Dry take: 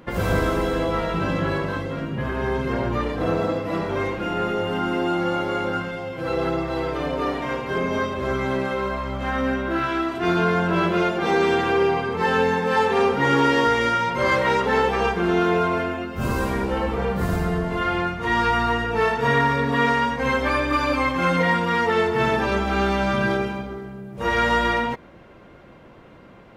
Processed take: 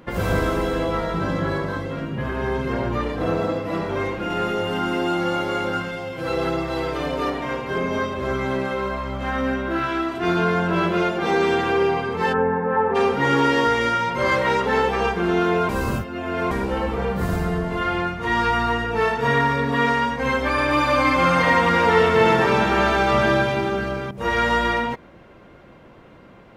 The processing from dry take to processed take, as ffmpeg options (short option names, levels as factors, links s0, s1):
-filter_complex "[0:a]asettb=1/sr,asplit=3[s0][s1][s2];[s0]atrim=end=0.974[s3];[s1]atrim=start=0.97:end=1.83,asetpts=PTS-STARTPTS,afade=t=in:d=0.004:c=qsin,afade=t=out:st=0.856:d=0.004:c=qsin,equalizer=f=2700:t=o:w=0.3:g=-8.5[s4];[s2]atrim=start=1.826[s5];[s3][s4]acrossfade=d=0.004:c1=hsin:c2=qsin[s6];[s6][s5]acrossfade=d=0.004:c1=qsin:c2=hsin,asettb=1/sr,asplit=3[s7][s8][s9];[s7]atrim=end=4.304[s10];[s8]atrim=start=4.3:end=7.3,asetpts=PTS-STARTPTS,afade=t=in:d=0.004:c=qsin,afade=t=out:st=2.996:d=0.004:c=qsin,equalizer=f=11000:t=o:w=3:g=5.5[s11];[s9]atrim=start=7.296[s12];[s10][s11]acrossfade=d=0.004:c1=hsin:c2=qsin[s13];[s13][s12]acrossfade=d=0.004:c1=qsin:c2=hsin,asplit=3[s14][s15][s16];[s14]afade=t=out:st=12.32:d=0.02[s17];[s15]lowpass=f=1600:w=0.5412,lowpass=f=1600:w=1.3066,afade=t=in:st=12.32:d=0.02,afade=t=out:st=12.94:d=0.02[s18];[s16]afade=t=in:st=12.94:d=0.02[s19];[s17][s18][s19]amix=inputs=3:normalize=0,asettb=1/sr,asplit=3[s20][s21][s22];[s20]atrim=end=20.514[s23];[s21]atrim=start=20.51:end=24.11,asetpts=PTS-STARTPTS,afade=t=in:d=0.004:c=qsin,afade=t=out:st=3.596:d=0.004:c=qsin,aecho=1:1:70|175|332.5|568.8|923.1:0.794|0.631|0.501|0.398|0.316,atrim=end_sample=158760[s24];[s22]atrim=start=24.106[s25];[s23][s24]acrossfade=d=0.004:c1=hsin:c2=qsin[s26];[s26][s25]acrossfade=d=0.004:c1=qsin:c2=hsin,asplit=3[s27][s28][s29];[s27]atrim=end=15.692[s30];[s28]atrim=start=15.688:end=16.512,asetpts=PTS-STARTPTS,areverse[s31];[s29]atrim=start=16.508[s32];[s30][s31]acrossfade=d=0.004:c1=hsin:c2=hsin[s33];[s33][s32]acrossfade=d=0.004:c1=hsin:c2=hsin"